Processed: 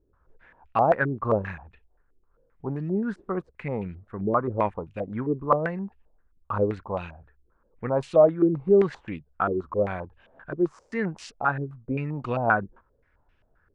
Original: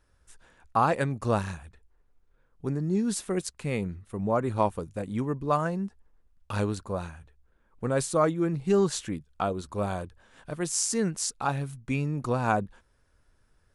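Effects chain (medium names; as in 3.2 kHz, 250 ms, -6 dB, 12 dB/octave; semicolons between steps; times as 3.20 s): step-sequenced low-pass 7.6 Hz 380–2700 Hz; trim -1.5 dB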